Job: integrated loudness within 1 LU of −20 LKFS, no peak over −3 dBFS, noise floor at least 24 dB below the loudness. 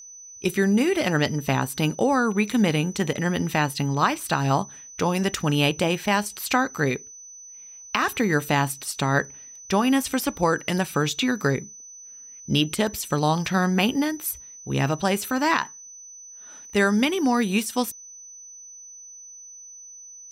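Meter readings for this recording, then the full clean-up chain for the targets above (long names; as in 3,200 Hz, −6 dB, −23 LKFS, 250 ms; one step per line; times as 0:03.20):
interfering tone 6,000 Hz; level of the tone −41 dBFS; integrated loudness −23.5 LKFS; sample peak −7.0 dBFS; target loudness −20.0 LKFS
→ notch filter 6,000 Hz, Q 30
level +3.5 dB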